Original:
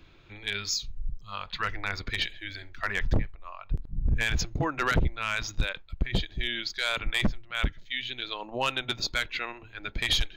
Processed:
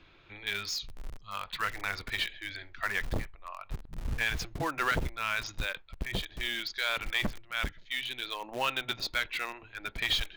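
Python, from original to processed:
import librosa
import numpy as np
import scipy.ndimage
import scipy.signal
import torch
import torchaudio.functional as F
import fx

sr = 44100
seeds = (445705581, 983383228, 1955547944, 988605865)

p1 = fx.air_absorb(x, sr, metres=120.0)
p2 = (np.mod(10.0 ** (30.5 / 20.0) * p1 + 1.0, 2.0) - 1.0) / 10.0 ** (30.5 / 20.0)
p3 = p1 + F.gain(torch.from_numpy(p2), -11.0).numpy()
y = fx.low_shelf(p3, sr, hz=400.0, db=-9.0)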